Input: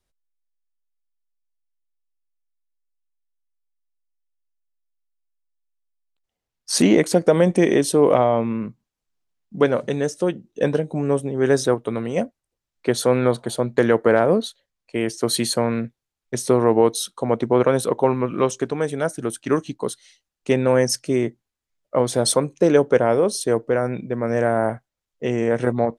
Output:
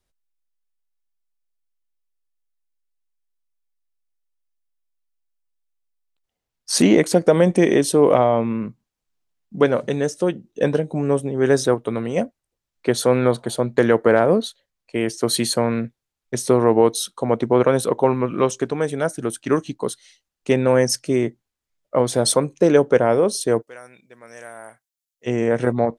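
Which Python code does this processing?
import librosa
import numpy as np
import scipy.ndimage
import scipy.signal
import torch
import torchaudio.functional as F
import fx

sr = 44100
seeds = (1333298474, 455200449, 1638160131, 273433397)

y = fx.pre_emphasis(x, sr, coefficient=0.97, at=(23.61, 25.26), fade=0.02)
y = y * librosa.db_to_amplitude(1.0)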